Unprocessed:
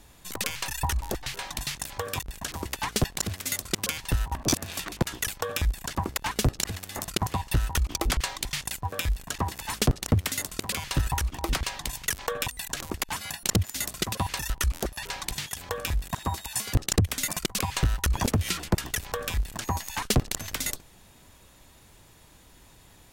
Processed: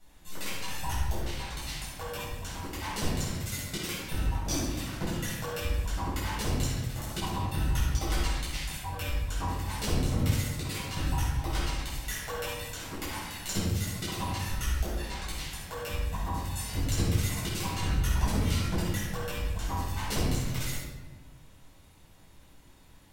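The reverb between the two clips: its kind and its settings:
rectangular room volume 700 cubic metres, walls mixed, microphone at 7.2 metres
level −17.5 dB

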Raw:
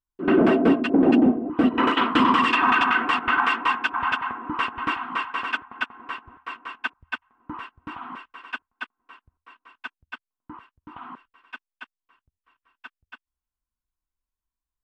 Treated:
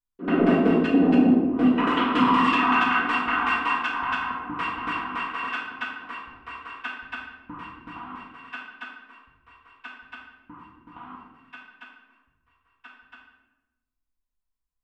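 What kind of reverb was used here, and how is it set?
rectangular room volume 470 cubic metres, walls mixed, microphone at 1.8 metres
level −6.5 dB

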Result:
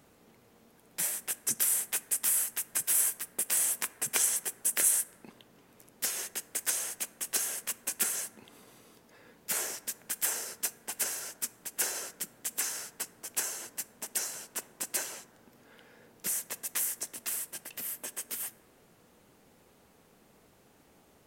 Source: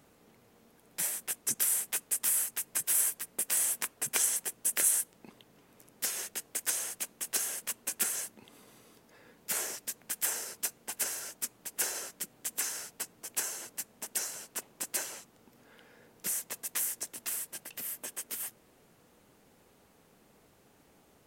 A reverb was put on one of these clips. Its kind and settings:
dense smooth reverb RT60 2.1 s, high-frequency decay 0.25×, DRR 15.5 dB
level +1 dB

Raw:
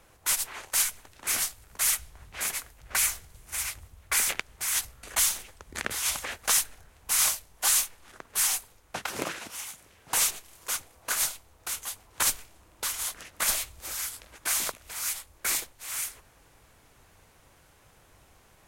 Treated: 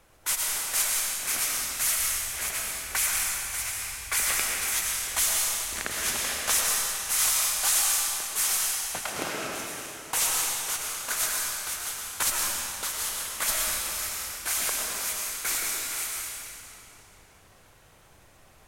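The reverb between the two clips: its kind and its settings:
comb and all-pass reverb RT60 2.8 s, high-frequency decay 0.95×, pre-delay 70 ms, DRR −2.5 dB
level −1.5 dB

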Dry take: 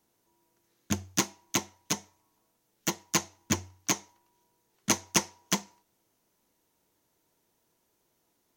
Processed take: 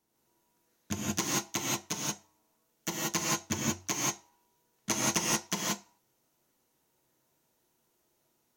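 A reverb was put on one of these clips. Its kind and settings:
reverb whose tail is shaped and stops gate 200 ms rising, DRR −4.5 dB
level −6 dB

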